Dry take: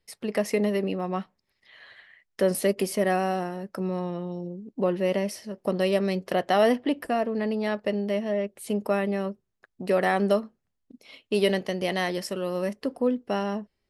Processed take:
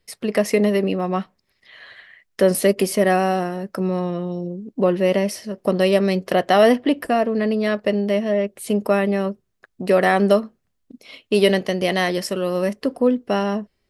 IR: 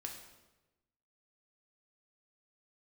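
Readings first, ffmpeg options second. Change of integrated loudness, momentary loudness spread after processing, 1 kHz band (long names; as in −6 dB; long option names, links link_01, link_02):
+7.0 dB, 9 LU, +6.5 dB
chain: -af "bandreject=frequency=860:width=12,volume=7dB"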